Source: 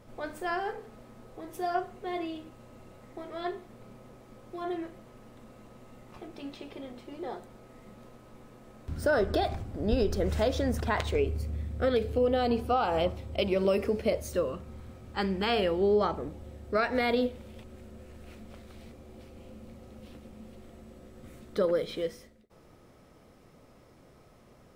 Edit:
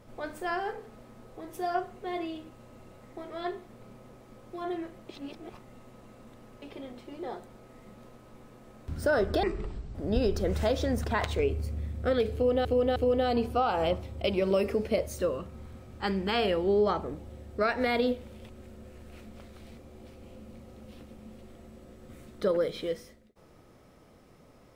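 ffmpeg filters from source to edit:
-filter_complex "[0:a]asplit=7[a][b][c][d][e][f][g];[a]atrim=end=5.092[h];[b]atrim=start=5.088:end=6.622,asetpts=PTS-STARTPTS,areverse[i];[c]atrim=start=6.618:end=9.434[j];[d]atrim=start=9.43:end=9.71,asetpts=PTS-STARTPTS,asetrate=23814,aresample=44100[k];[e]atrim=start=9.706:end=12.412[l];[f]atrim=start=12.098:end=12.412[m];[g]atrim=start=12.098[n];[h][i]acrossfade=d=0.004:c1=hsin:c2=hsin[o];[o][j]acrossfade=d=0.004:c1=hsin:c2=hsin[p];[p][k]acrossfade=d=0.004:c1=hsin:c2=hsin[q];[q][l]acrossfade=d=0.004:c1=hsin:c2=hsin[r];[r][m]acrossfade=d=0.004:c1=hsin:c2=hsin[s];[s][n]acrossfade=d=0.004:c1=hsin:c2=hsin"

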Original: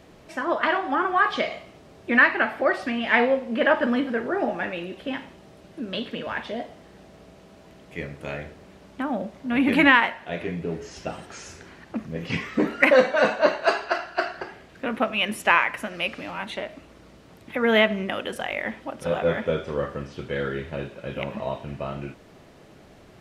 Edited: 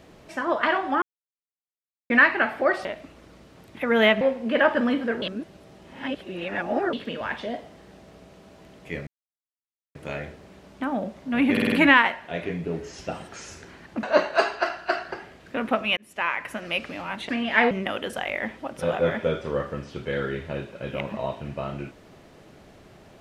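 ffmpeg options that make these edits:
-filter_complex "[0:a]asplit=16[a][b][c][d][e][f][g][h][i][j][k][l][m][n][o][p];[a]atrim=end=1.02,asetpts=PTS-STARTPTS,afade=t=out:st=1.016:d=0.004:c=hsin[q];[b]atrim=start=1.02:end=2.1,asetpts=PTS-STARTPTS,volume=0[r];[c]atrim=start=2.1:end=2.852,asetpts=PTS-STARTPTS,afade=t=in:d=0.004:c=hsin[s];[d]atrim=start=16.578:end=17.942[t];[e]atrim=start=3.268:end=4.282[u];[f]atrim=start=4.278:end=5.992,asetpts=PTS-STARTPTS,areverse[v];[g]atrim=start=5.988:end=8.13,asetpts=PTS-STARTPTS,afade=t=out:st=2.138:d=0.004:c=hsin,apad=pad_dur=0.88[w];[h]atrim=start=8.13:end=9.752,asetpts=PTS-STARTPTS,afade=t=in:d=0.004:c=hsin[x];[i]atrim=start=9.698:end=9.752[y];[j]atrim=start=9.698:end=9.752[z];[k]atrim=start=9.698:end=9.752[aa];[l]atrim=start=9.698:end=12.012[ab];[m]atrim=start=13.318:end=15.26,asetpts=PTS-STARTPTS,afade=t=out:st=1.938:d=0.004:c=hsin[ac];[n]atrim=start=15.26:end=16.582,asetpts=PTS-STARTPTS,afade=t=in:d=0.69[ad];[o]atrim=start=2.848:end=3.272[ae];[p]atrim=start=17.938[af];[q][r][s]concat=n=3:v=0:a=1[ag];[ag][t]acrossfade=d=0.004:c1=hsin:c2=hsin[ah];[ah][u]acrossfade=d=0.004:c1=hsin:c2=hsin[ai];[ai][v]acrossfade=d=0.004:c1=hsin:c2=hsin[aj];[w][x]concat=n=2:v=0:a=1[ak];[aj][ak]acrossfade=d=0.004:c1=hsin:c2=hsin[al];[al][y]acrossfade=d=0.004:c1=hsin:c2=hsin[am];[am][z]acrossfade=d=0.004:c1=hsin:c2=hsin[an];[an][aa]acrossfade=d=0.004:c1=hsin:c2=hsin[ao];[ao][ab]acrossfade=d=0.004:c1=hsin:c2=hsin[ap];[ac][ad]concat=n=2:v=0:a=1[aq];[ap][aq]acrossfade=d=0.004:c1=hsin:c2=hsin[ar];[ar][ae]acrossfade=d=0.004:c1=hsin:c2=hsin[as];[as][af]acrossfade=d=0.004:c1=hsin:c2=hsin"

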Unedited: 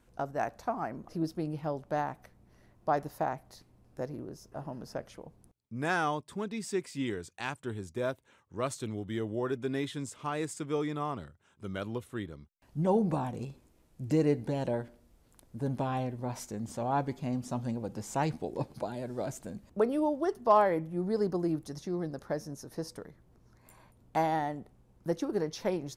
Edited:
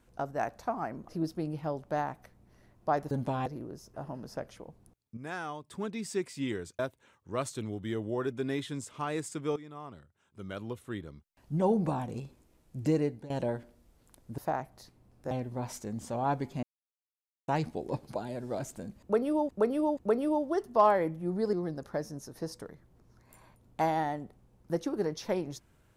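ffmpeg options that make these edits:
-filter_complex "[0:a]asplit=15[a][b][c][d][e][f][g][h][i][j][k][l][m][n][o];[a]atrim=end=3.112[p];[b]atrim=start=15.628:end=15.982[q];[c]atrim=start=4.038:end=5.752[r];[d]atrim=start=5.748:end=6.222,asetpts=PTS-STARTPTS,volume=-8.5dB[s];[e]atrim=start=6.218:end=7.372[t];[f]atrim=start=8.038:end=10.81,asetpts=PTS-STARTPTS,afade=t=out:st=2.768:d=0.004:c=hsin:silence=0.188365[u];[g]atrim=start=10.81:end=14.55,asetpts=PTS-STARTPTS,afade=t=in:d=1.55:silence=0.188365,afade=t=out:st=3.34:d=0.4:silence=0.149624[v];[h]atrim=start=14.55:end=15.632,asetpts=PTS-STARTPTS,afade=t=in:d=0.004:c=hsin:silence=0.149624[w];[i]atrim=start=3.108:end=4.042[x];[j]atrim=start=15.978:end=17.3,asetpts=PTS-STARTPTS,afade=t=out:st=1.318:d=0.004:c=hsin[y];[k]atrim=start=17.3:end=18.15,asetpts=PTS-STARTPTS,volume=0[z];[l]atrim=start=18.15:end=20.162,asetpts=PTS-STARTPTS,afade=t=in:d=0.004:c=hsin[aa];[m]atrim=start=19.678:end=20.162[ab];[n]atrim=start=19.678:end=21.242[ac];[o]atrim=start=21.888[ad];[p][q]acrossfade=d=0.004:c1=hsin:c2=hsin[ae];[ae][r]acrossfade=d=0.004:c1=hsin:c2=hsin[af];[af][s]acrossfade=d=0.004:c1=hsin:c2=hsin[ag];[ag][t]acrossfade=d=0.004:c1=hsin:c2=hsin[ah];[u][v][w]concat=n=3:v=0:a=1[ai];[ah][ai]acrossfade=d=0.004:c1=hsin:c2=hsin[aj];[aj][x]acrossfade=d=0.004:c1=hsin:c2=hsin[ak];[y][z][aa]concat=n=3:v=0:a=1[al];[ak][al]acrossfade=d=0.004:c1=hsin:c2=hsin[am];[am][ab]acrossfade=d=0.004:c1=hsin:c2=hsin[an];[an][ac]acrossfade=d=0.004:c1=hsin:c2=hsin[ao];[ao][ad]acrossfade=d=0.004:c1=hsin:c2=hsin"

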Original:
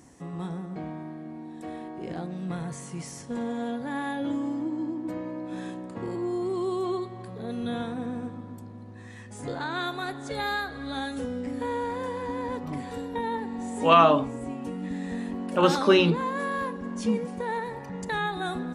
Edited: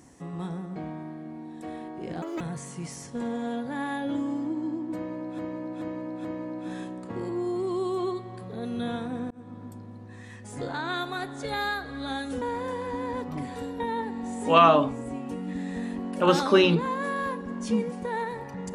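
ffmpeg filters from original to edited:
-filter_complex "[0:a]asplit=8[a][b][c][d][e][f][g][h];[a]atrim=end=2.224[i];[b]atrim=start=2.22:end=2.56,asetpts=PTS-STARTPTS,asetrate=80703,aresample=44100,atrim=end_sample=8193,asetpts=PTS-STARTPTS[j];[c]atrim=start=2.556:end=5.542[k];[d]atrim=start=5.108:end=5.542[l];[e]atrim=start=5.108:end=5.542[m];[f]atrim=start=5.108:end=8.17,asetpts=PTS-STARTPTS,afade=t=out:st=3.058:d=0.004:c=hsin[n];[g]atrim=start=8.17:end=11.282,asetpts=PTS-STARTPTS,afade=t=in:d=0.43:c=qsin[o];[h]atrim=start=11.768[p];[i][j]acrossfade=d=0.004:c1=hsin:c2=hsin[q];[q][k]acrossfade=d=0.004:c1=hsin:c2=hsin[r];[r][l]acrossfade=d=0.004:c1=hsin:c2=hsin[s];[s][m]acrossfade=d=0.004:c1=hsin:c2=hsin[t];[n][o]concat=n=2:v=0:a=1[u];[t][u]acrossfade=d=0.004:c1=hsin:c2=hsin[v];[v][p]acrossfade=d=0.004:c1=hsin:c2=hsin"

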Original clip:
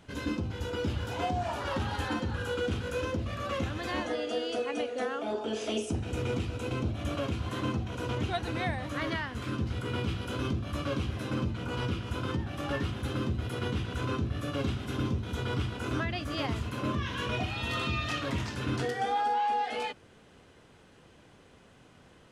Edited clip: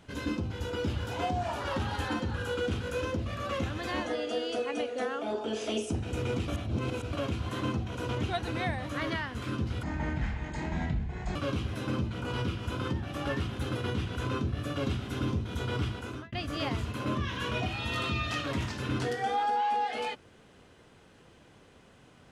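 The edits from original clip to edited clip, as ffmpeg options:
-filter_complex "[0:a]asplit=7[a][b][c][d][e][f][g];[a]atrim=end=6.482[h];[b]atrim=start=6.478:end=7.132,asetpts=PTS-STARTPTS,areverse[i];[c]atrim=start=7.128:end=9.834[j];[d]atrim=start=9.83:end=10.79,asetpts=PTS-STARTPTS,asetrate=27783,aresample=44100[k];[e]atrim=start=10.786:end=13.192[l];[f]atrim=start=13.528:end=16.1,asetpts=PTS-STARTPTS,afade=t=out:st=2.152:d=0.42[m];[g]atrim=start=16.1,asetpts=PTS-STARTPTS,afade=t=in:d=0.004:c=hsin[n];[h][i]acrossfade=d=0.004:c1=hsin:c2=hsin[o];[o][j]acrossfade=d=0.004:c1=hsin:c2=hsin[p];[p][k]acrossfade=d=0.004:c1=hsin:c2=hsin[q];[q][l]acrossfade=d=0.004:c1=hsin:c2=hsin[r];[m][n]concat=n=2:v=0:a=1[s];[r][s]acrossfade=d=0.004:c1=hsin:c2=hsin"

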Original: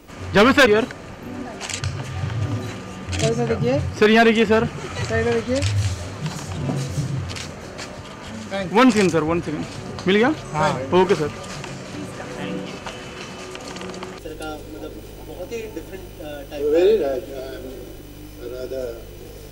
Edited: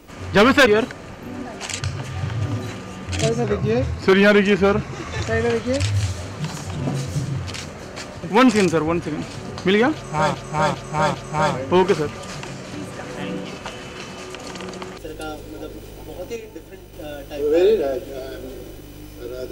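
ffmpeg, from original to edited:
-filter_complex "[0:a]asplit=9[a][b][c][d][e][f][g][h][i];[a]atrim=end=3.444[j];[b]atrim=start=3.44:end=5.08,asetpts=PTS-STARTPTS,asetrate=39690,aresample=44100[k];[c]atrim=start=5.076:end=8.052[l];[d]atrim=start=8.638:end=10.752[m];[e]atrim=start=10.348:end=10.752[n];[f]atrim=start=10.348:end=10.752[o];[g]atrim=start=10.348:end=15.572[p];[h]atrim=start=15.568:end=16.142,asetpts=PTS-STARTPTS,volume=-5dB[q];[i]atrim=start=16.138[r];[j][k]acrossfade=d=0.004:c1=hsin:c2=hsin[s];[s][l]acrossfade=d=0.004:c1=hsin:c2=hsin[t];[t][m]acrossfade=d=0.004:c1=hsin:c2=hsin[u];[u][n]acrossfade=d=0.004:c1=hsin:c2=hsin[v];[v][o]acrossfade=d=0.004:c1=hsin:c2=hsin[w];[w][p]acrossfade=d=0.004:c1=hsin:c2=hsin[x];[x][q]acrossfade=d=0.004:c1=hsin:c2=hsin[y];[y][r]acrossfade=d=0.004:c1=hsin:c2=hsin"

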